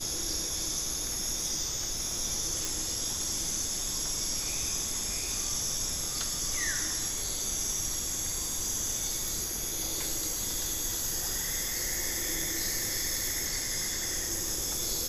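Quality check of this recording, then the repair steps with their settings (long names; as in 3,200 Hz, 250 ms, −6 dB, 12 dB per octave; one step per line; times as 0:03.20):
0:02.65: click
0:09.28: click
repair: click removal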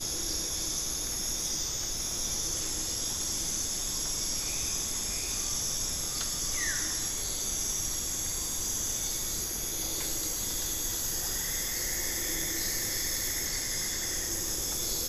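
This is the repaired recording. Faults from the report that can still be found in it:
none of them is left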